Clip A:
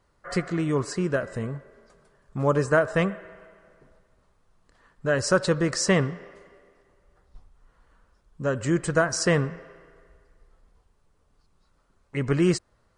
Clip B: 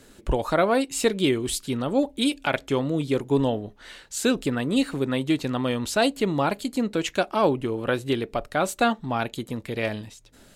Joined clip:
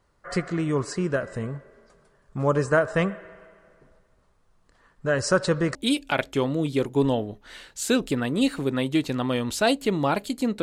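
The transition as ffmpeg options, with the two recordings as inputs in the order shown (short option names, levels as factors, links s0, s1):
-filter_complex "[0:a]apad=whole_dur=10.62,atrim=end=10.62,atrim=end=5.752[s0];[1:a]atrim=start=2.098:end=6.97[s1];[s0][s1]acrossfade=d=0.004:c1=hsin:c2=hsin"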